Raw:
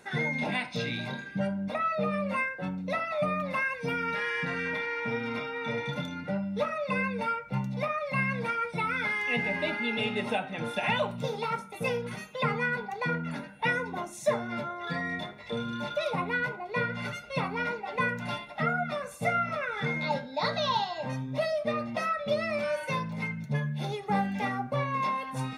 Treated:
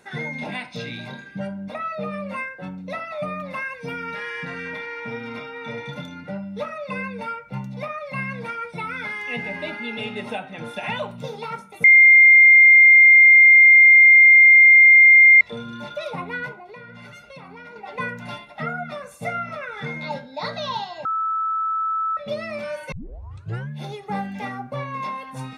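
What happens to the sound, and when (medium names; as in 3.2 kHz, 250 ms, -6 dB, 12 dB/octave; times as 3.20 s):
11.84–15.41 s: bleep 2.11 kHz -7 dBFS
16.53–17.76 s: compression, threshold -38 dBFS
21.05–22.17 s: bleep 1.31 kHz -20.5 dBFS
22.92 s: tape start 0.77 s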